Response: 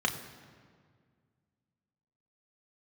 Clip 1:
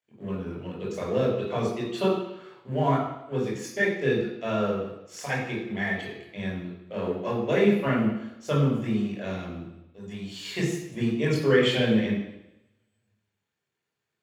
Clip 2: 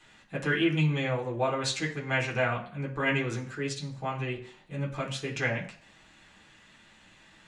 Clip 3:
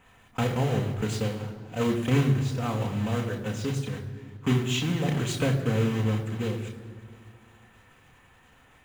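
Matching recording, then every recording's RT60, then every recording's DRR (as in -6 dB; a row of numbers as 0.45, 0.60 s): 3; 0.90, 0.55, 1.9 s; -4.5, -3.0, 2.0 dB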